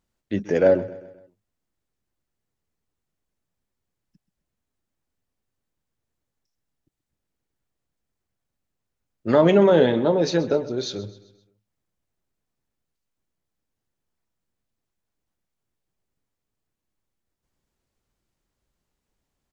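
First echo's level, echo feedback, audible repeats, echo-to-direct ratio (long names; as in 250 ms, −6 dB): −17.5 dB, 48%, 3, −16.5 dB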